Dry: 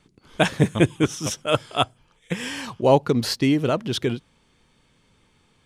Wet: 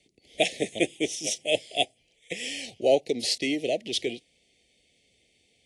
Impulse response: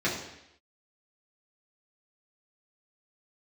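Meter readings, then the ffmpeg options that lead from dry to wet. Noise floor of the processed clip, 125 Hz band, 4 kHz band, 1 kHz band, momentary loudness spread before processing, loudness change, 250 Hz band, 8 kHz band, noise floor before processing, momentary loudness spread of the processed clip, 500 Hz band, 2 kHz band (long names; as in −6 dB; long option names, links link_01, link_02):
−68 dBFS, −21.5 dB, 0.0 dB, −10.0 dB, 10 LU, −5.0 dB, −10.0 dB, +0.5 dB, −63 dBFS, 10 LU, −4.0 dB, −3.5 dB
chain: -filter_complex "[0:a]highpass=67,acrossover=split=210[link_01][link_02];[link_01]acompressor=threshold=-38dB:ratio=6[link_03];[link_03][link_02]amix=inputs=2:normalize=0,asuperstop=centerf=1200:order=12:qfactor=0.98,equalizer=frequency=140:width=0.57:gain=-14" -ar 24000 -c:a aac -b:a 48k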